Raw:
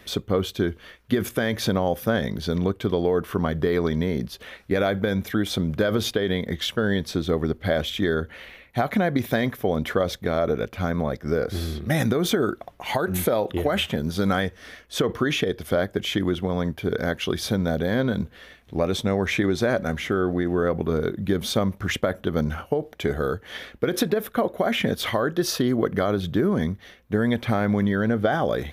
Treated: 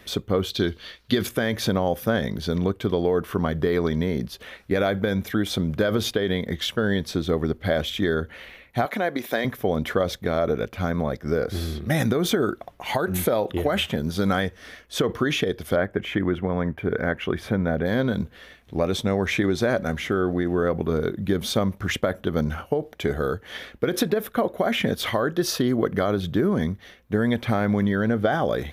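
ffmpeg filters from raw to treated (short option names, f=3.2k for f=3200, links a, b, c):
-filter_complex "[0:a]asettb=1/sr,asplit=3[a][b][c];[a]atrim=end=0.504[d];[b]atrim=start=0.5:end=1.27,asetpts=PTS-STARTPTS,afade=t=in:d=0.004:c=qsin,afade=t=out:st=0.766:d=0.004:c=qsin,equalizer=f=4.2k:w=1.5:g=13.5[e];[c]atrim=start=1.266[f];[d][e]acrossfade=d=0.004:c1=hsin:c2=qsin[g];[g][f]acrossfade=d=0.004:c1=qsin:c2=hsin,asettb=1/sr,asplit=3[h][i][j];[h]atrim=end=8.854[k];[i]atrim=start=8.85:end=9.45,asetpts=PTS-STARTPTS,afade=t=in:d=0.004:c=qsin,afade=t=out:st=0.596:d=0.004:c=qsin,highpass=340[l];[j]atrim=start=9.446[m];[k][l]acrossfade=d=0.004:c1=hsin:c2=qsin[n];[n][m]acrossfade=d=0.004:c1=qsin:c2=hsin,asettb=1/sr,asplit=3[o][p][q];[o]atrim=end=15.764[r];[p]atrim=start=15.76:end=17.86,asetpts=PTS-STARTPTS,afade=t=in:d=0.004:c=qsin,afade=t=out:st=2.096:d=0.004:c=qsin,highshelf=f=3k:t=q:w=1.5:g=-12[s];[q]atrim=start=17.856[t];[r][s]acrossfade=d=0.004:c1=hsin:c2=qsin[u];[u][t]acrossfade=d=0.004:c1=qsin:c2=hsin"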